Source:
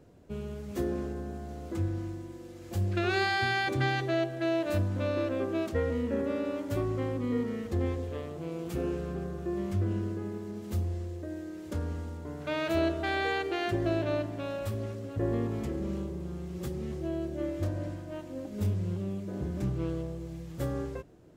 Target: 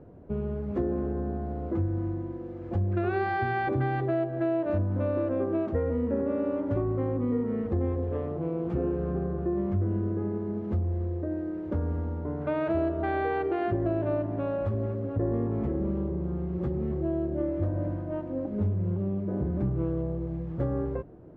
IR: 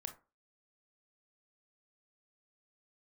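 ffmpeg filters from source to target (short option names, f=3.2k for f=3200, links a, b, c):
-af "lowpass=1.1k,acompressor=threshold=-33dB:ratio=3,volume=7.5dB"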